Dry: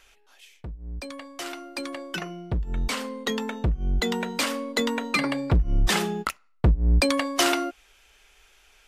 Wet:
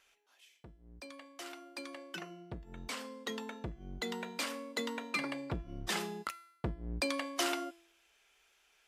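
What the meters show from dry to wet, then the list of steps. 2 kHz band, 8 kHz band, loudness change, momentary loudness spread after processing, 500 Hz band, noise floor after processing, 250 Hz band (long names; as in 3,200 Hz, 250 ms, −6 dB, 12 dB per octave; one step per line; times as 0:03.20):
−11.0 dB, −11.0 dB, −13.0 dB, 15 LU, −12.0 dB, −71 dBFS, −13.0 dB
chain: high-pass filter 180 Hz 6 dB per octave
tuned comb filter 340 Hz, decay 0.68 s, mix 70%
level −1.5 dB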